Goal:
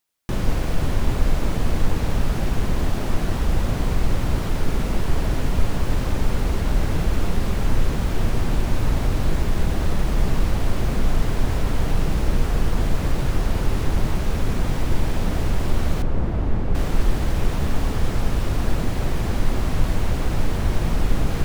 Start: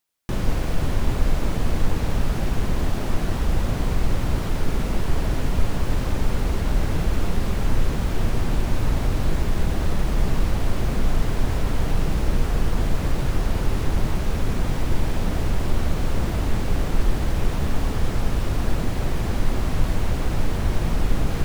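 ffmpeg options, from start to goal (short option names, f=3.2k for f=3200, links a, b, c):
-filter_complex "[0:a]asettb=1/sr,asplit=3[a][b][c];[a]atrim=end=16.024[d];[b]atrim=start=16.02:end=16.75,asetpts=PTS-STARTPTS,afade=t=in:d=0.004:c=qsin,afade=t=out:st=0.726:d=0.004:c=qsin,lowpass=f=1k:p=1[e];[c]atrim=start=16.746[f];[d][e]acrossfade=d=0.004:c1=hsin:c2=qsin[g];[g][f]acrossfade=d=0.004:c1=qsin:c2=hsin,volume=1dB"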